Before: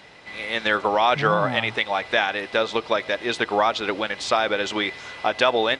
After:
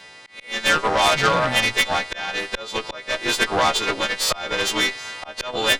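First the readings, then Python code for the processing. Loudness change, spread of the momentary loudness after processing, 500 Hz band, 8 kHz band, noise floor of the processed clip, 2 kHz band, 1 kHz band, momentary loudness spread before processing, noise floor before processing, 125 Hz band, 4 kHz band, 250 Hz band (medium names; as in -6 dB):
+2.0 dB, 12 LU, -2.5 dB, +13.0 dB, -44 dBFS, +2.0 dB, 0.0 dB, 7 LU, -42 dBFS, +0.5 dB, +5.0 dB, -1.0 dB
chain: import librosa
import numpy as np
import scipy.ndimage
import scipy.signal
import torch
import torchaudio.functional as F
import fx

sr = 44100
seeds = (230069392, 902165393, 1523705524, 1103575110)

y = fx.freq_snap(x, sr, grid_st=2)
y = fx.auto_swell(y, sr, attack_ms=291.0)
y = fx.cheby_harmonics(y, sr, harmonics=(4, 6), levels_db=(-9, -9), full_scale_db=-5.5)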